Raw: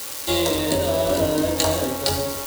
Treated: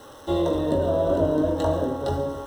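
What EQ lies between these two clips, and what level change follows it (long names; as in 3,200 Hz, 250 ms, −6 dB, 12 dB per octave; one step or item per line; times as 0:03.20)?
moving average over 19 samples
0.0 dB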